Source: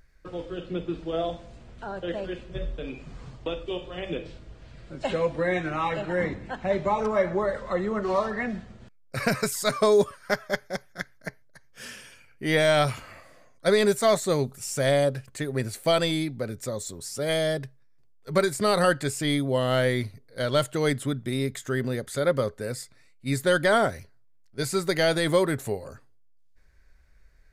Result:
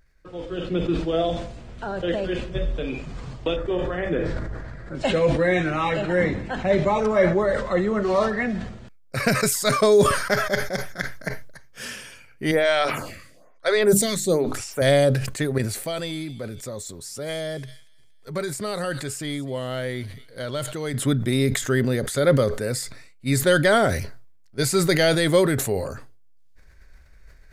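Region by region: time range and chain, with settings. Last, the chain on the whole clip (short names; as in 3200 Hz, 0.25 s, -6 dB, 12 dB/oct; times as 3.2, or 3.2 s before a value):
3.56–4.95 resonant high shelf 2200 Hz -7 dB, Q 3 + sustainer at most 26 dB/s
12.51–14.82 notches 50/100/150/200/250/300/350 Hz + photocell phaser 1.1 Hz
15.58–20.94 compressor 1.5:1, threshold -52 dBFS + thin delay 0.234 s, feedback 39%, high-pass 2500 Hz, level -17 dB
whole clip: AGC gain up to 10.5 dB; dynamic EQ 980 Hz, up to -5 dB, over -30 dBFS, Q 1.8; sustainer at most 62 dB/s; gain -4 dB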